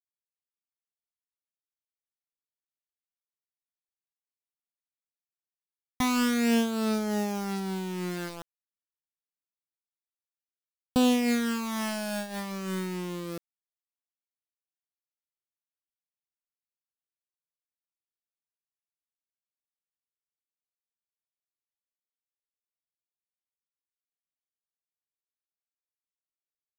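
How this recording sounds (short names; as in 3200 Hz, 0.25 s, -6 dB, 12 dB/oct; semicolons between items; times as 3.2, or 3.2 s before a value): phasing stages 12, 0.31 Hz, lowest notch 370–3300 Hz; a quantiser's noise floor 6-bit, dither none; noise-modulated level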